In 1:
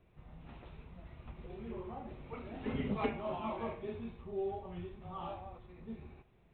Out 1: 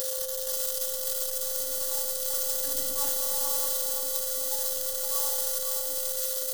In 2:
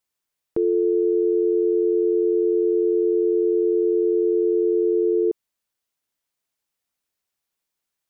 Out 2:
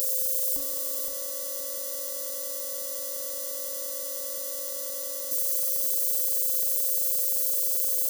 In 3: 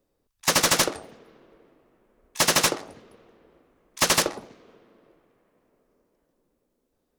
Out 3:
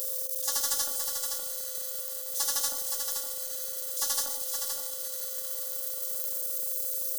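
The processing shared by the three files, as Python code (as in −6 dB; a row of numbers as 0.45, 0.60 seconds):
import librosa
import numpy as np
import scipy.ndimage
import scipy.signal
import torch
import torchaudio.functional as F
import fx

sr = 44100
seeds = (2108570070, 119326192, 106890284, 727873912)

p1 = x + 0.5 * 10.0 ** (-20.5 / 20.0) * np.diff(np.sign(x), prepend=np.sign(x[:1]))
p2 = fx.tone_stack(p1, sr, knobs='5-5-5')
p3 = fx.hum_notches(p2, sr, base_hz=50, count=7)
p4 = fx.over_compress(p3, sr, threshold_db=-38.0, ratio=-1.0)
p5 = p3 + (p4 * 10.0 ** (-2.0 / 20.0))
p6 = fx.robotise(p5, sr, hz=283.0)
p7 = fx.fixed_phaser(p6, sr, hz=980.0, stages=4)
p8 = fx.small_body(p7, sr, hz=(760.0, 3300.0), ring_ms=45, db=8)
p9 = p8 + 10.0 ** (-45.0 / 20.0) * np.sin(2.0 * np.pi * 520.0 * np.arange(len(p8)) / sr)
p10 = fx.comb_fb(p9, sr, f0_hz=51.0, decay_s=0.69, harmonics='all', damping=0.0, mix_pct=50)
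p11 = p10 + fx.echo_feedback(p10, sr, ms=518, feedback_pct=23, wet_db=-6, dry=0)
y = p11 * 10.0 ** (-6 / 20.0) / np.max(np.abs(p11))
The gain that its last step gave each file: +15.0, +10.0, +5.0 decibels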